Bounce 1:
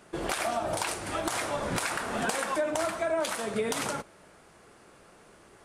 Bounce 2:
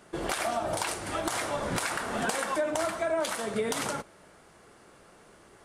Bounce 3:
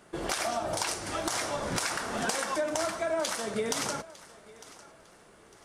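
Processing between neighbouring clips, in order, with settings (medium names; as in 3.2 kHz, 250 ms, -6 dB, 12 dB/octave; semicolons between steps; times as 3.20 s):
band-stop 2.5 kHz, Q 24
dynamic bell 5.6 kHz, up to +8 dB, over -53 dBFS, Q 1.8; thinning echo 903 ms, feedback 31%, level -19 dB; trim -1.5 dB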